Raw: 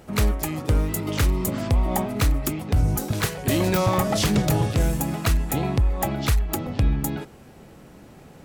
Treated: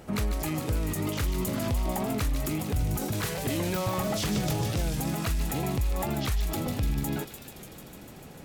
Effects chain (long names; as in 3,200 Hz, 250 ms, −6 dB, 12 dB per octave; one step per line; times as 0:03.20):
brickwall limiter −21.5 dBFS, peak gain reduction 9 dB
delay with a high-pass on its return 148 ms, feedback 81%, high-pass 2,600 Hz, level −6 dB
wow of a warped record 45 rpm, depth 100 cents